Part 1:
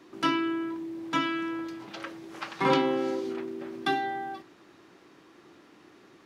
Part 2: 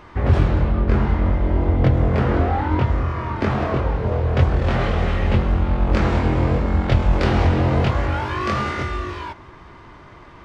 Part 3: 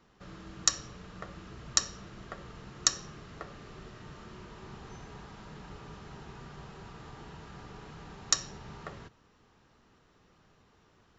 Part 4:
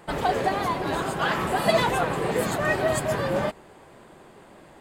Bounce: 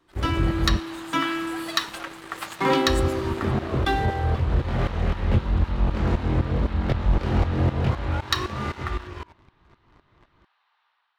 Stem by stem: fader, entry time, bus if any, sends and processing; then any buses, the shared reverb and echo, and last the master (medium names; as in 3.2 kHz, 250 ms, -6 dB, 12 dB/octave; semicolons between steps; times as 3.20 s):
-9.5 dB, 0.00 s, no send, none
-18.5 dB, 0.00 s, muted 0.80–2.87 s, no send, tremolo saw up 3.9 Hz, depth 85%; bass shelf 460 Hz +6.5 dB
-0.5 dB, 0.00 s, no send, Chebyshev band-pass 850–4000 Hz, order 3
-18.5 dB, 0.00 s, no send, amplifier tone stack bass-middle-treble 10-0-10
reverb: none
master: level rider gain up to 5 dB; waveshaping leveller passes 2